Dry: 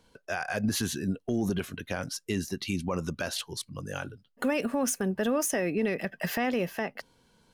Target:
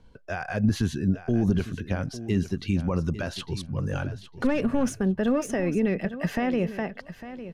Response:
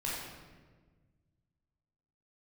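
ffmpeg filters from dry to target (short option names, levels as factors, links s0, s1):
-filter_complex "[0:a]asettb=1/sr,asplit=3[s0][s1][s2];[s0]atrim=end=3.364[s3];[s1]atrim=start=3.36:end=4.93,asetpts=PTS-STARTPTS,afade=t=in:d=0.004:c=qsin,afade=t=out:st=1.566:d=0.004:c=qsin,aeval=exprs='0.119*(cos(1*acos(clip(val(0)/0.119,-1,1)))-cos(1*PI/2))+0.0119*(cos(5*acos(clip(val(0)/0.119,-1,1)))-cos(5*PI/2))':c=same[s4];[s2]atrim=start=4.926[s5];[s3][s4]acrossfade=d=0.004:c1=hsin:c2=qsin[s6];[s6][s5]acrossfade=d=0.004:c1=qsin:c2=hsin,aemphasis=mode=reproduction:type=bsi,aecho=1:1:853|1706:0.211|0.0317"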